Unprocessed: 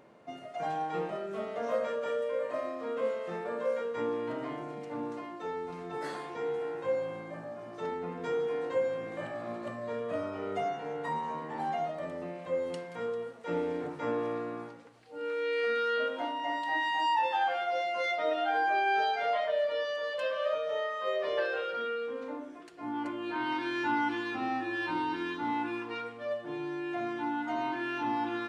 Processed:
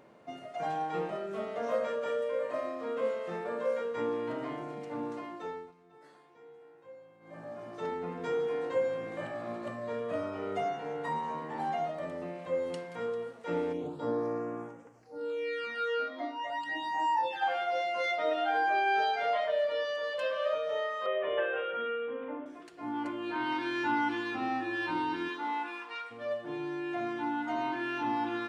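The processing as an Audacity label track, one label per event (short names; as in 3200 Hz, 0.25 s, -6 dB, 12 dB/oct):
5.270000	7.660000	dip -20 dB, fades 0.46 s equal-power
13.720000	17.410000	phaser stages 12, 0.15 Hz -> 0.82 Hz, lowest notch 150–4100 Hz
21.060000	22.460000	steep low-pass 3400 Hz 96 dB/oct
25.280000	26.100000	HPF 320 Hz -> 1100 Hz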